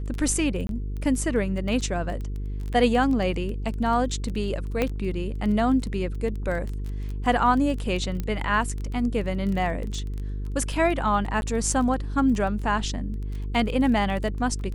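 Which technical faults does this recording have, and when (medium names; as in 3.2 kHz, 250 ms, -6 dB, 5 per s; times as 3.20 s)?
buzz 50 Hz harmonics 9 -30 dBFS
crackle 15 per s -30 dBFS
0.67–0.69 s: dropout 22 ms
4.82 s: pop -11 dBFS
8.20 s: pop -16 dBFS
11.41–11.42 s: dropout 11 ms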